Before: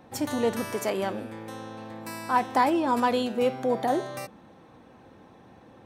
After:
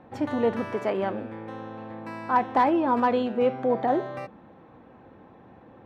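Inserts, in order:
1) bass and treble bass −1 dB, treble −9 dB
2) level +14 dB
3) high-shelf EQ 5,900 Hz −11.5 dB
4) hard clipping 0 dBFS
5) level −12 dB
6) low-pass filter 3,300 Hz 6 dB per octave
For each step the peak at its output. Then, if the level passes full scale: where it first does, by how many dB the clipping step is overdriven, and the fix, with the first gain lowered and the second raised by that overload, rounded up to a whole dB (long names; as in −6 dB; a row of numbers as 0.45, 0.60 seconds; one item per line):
−10.5, +3.5, +3.0, 0.0, −12.0, −12.0 dBFS
step 2, 3.0 dB
step 2 +11 dB, step 5 −9 dB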